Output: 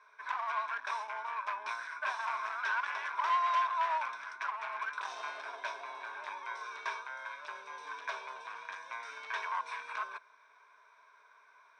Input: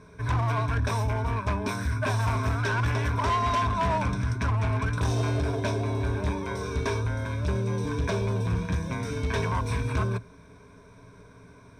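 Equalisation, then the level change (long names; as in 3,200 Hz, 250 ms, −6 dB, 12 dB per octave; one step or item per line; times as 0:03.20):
high-pass filter 1,000 Hz 24 dB per octave
high-frequency loss of the air 86 metres
spectral tilt −3 dB per octave
0.0 dB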